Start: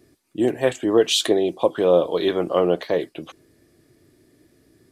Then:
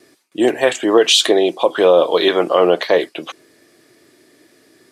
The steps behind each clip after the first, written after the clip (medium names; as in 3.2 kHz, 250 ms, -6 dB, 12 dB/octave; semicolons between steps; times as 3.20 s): frequency weighting A; gate with hold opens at -58 dBFS; loudness maximiser +12 dB; trim -1 dB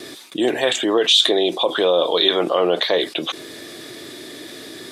peaking EQ 3.6 kHz +13 dB 0.27 oct; level flattener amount 50%; trim -9.5 dB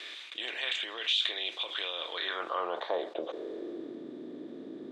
spectral levelling over time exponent 0.6; band-pass sweep 2.4 kHz -> 240 Hz, 1.92–4.02 s; trim -9 dB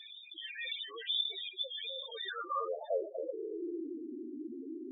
loudest bins only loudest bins 4; trim +2.5 dB